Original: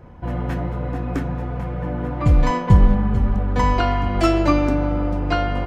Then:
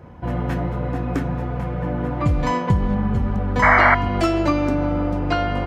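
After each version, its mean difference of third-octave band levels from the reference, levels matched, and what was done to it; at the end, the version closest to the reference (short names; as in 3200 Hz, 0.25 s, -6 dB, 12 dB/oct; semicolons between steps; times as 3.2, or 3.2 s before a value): 1.0 dB: HPF 60 Hz; compressor 3:1, threshold -18 dBFS, peak gain reduction 8 dB; painted sound noise, 3.62–3.95, 580–2300 Hz -16 dBFS; gain +2 dB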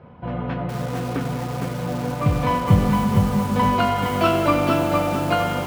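7.0 dB: speaker cabinet 130–3900 Hz, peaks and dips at 320 Hz -9 dB, 830 Hz -3 dB, 1800 Hz -6 dB; on a send: multi-head echo 94 ms, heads first and second, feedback 57%, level -15 dB; on the sum: lo-fi delay 0.461 s, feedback 35%, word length 6-bit, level -3 dB; gain +2 dB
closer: first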